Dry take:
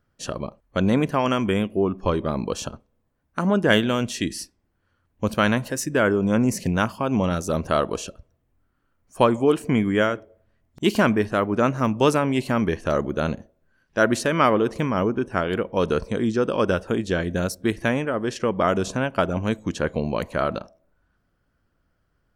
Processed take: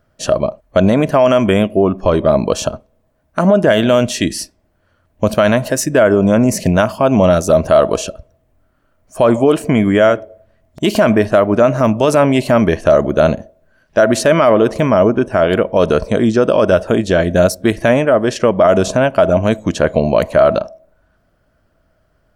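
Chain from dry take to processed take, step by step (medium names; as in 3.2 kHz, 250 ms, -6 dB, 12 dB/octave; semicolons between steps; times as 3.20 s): peaking EQ 630 Hz +13.5 dB 0.25 oct; loudness maximiser +10.5 dB; trim -1 dB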